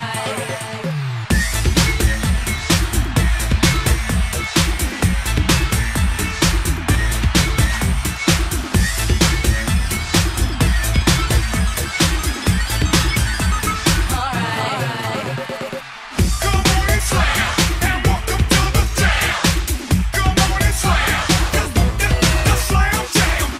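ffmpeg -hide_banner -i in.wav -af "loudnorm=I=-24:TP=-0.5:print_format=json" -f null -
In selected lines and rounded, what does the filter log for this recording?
"input_i" : "-17.3",
"input_tp" : "-3.2",
"input_lra" : "2.5",
"input_thresh" : "-27.3",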